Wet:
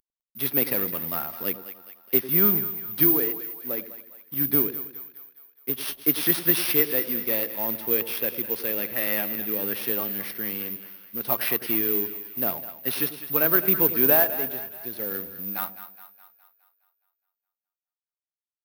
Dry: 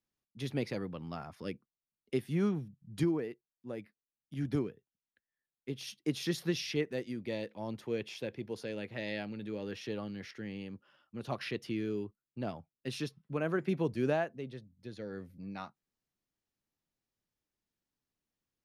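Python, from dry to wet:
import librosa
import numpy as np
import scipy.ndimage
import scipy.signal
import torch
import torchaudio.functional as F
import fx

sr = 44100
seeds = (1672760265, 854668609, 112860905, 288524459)

y = fx.cvsd(x, sr, bps=32000)
y = fx.dynamic_eq(y, sr, hz=1600.0, q=0.73, threshold_db=-52.0, ratio=4.0, max_db=5)
y = (np.kron(scipy.signal.resample_poly(y, 1, 3), np.eye(3)[0]) * 3)[:len(y)]
y = fx.peak_eq(y, sr, hz=110.0, db=-10.5, octaves=1.2)
y = fx.echo_split(y, sr, split_hz=670.0, low_ms=99, high_ms=208, feedback_pct=52, wet_db=-12)
y = y * 10.0 ** (6.5 / 20.0)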